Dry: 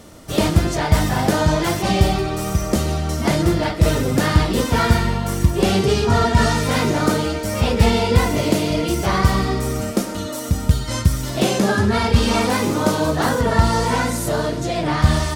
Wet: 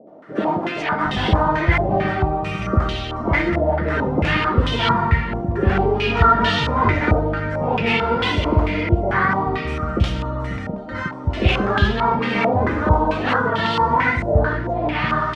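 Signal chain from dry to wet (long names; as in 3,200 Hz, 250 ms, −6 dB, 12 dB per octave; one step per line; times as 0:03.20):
three-band delay without the direct sound mids, highs, lows 70/760 ms, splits 180/650 Hz
low-pass on a step sequencer 4.5 Hz 690–3,200 Hz
level −1.5 dB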